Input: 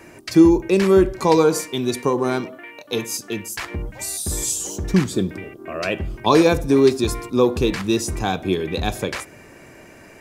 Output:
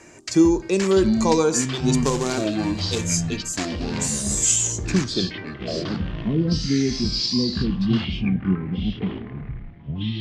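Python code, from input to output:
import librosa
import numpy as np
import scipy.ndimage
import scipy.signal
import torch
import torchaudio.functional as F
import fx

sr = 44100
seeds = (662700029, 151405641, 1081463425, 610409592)

y = fx.quant_companded(x, sr, bits=4, at=(2.02, 3.1))
y = fx.filter_sweep_lowpass(y, sr, from_hz=7100.0, to_hz=200.0, start_s=5.0, end_s=5.98, q=3.9)
y = fx.echo_pitch(y, sr, ms=497, semitones=-7, count=3, db_per_echo=-6.0)
y = y * librosa.db_to_amplitude(-4.0)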